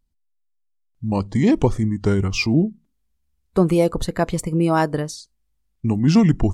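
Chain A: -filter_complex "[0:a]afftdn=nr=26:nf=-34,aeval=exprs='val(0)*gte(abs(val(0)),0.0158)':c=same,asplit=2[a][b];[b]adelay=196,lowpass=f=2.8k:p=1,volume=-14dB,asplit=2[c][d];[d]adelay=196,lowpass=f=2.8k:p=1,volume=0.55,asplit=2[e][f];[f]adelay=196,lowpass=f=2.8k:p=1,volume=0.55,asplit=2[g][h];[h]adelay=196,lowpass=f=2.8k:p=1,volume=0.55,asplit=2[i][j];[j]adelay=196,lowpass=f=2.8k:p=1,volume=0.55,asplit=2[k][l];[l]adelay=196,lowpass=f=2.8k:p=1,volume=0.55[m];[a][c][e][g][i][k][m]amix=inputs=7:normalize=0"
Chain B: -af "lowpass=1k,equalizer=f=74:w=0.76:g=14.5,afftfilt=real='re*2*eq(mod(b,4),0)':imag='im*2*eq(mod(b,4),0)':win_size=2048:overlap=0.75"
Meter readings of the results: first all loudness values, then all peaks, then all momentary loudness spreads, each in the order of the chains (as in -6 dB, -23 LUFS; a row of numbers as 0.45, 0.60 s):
-20.0, -17.0 LUFS; -3.5, -2.0 dBFS; 14, 13 LU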